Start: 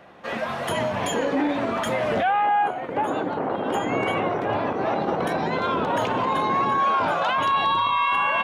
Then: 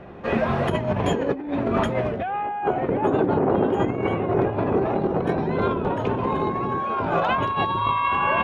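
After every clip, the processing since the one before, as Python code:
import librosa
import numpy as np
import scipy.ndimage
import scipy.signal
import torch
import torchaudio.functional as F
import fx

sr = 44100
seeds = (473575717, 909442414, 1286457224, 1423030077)

y = fx.riaa(x, sr, side='playback')
y = fx.over_compress(y, sr, threshold_db=-23.0, ratio=-0.5)
y = fx.small_body(y, sr, hz=(390.0, 2500.0), ring_ms=45, db=8)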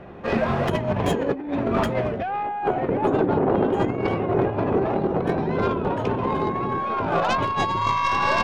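y = fx.tracing_dist(x, sr, depth_ms=0.077)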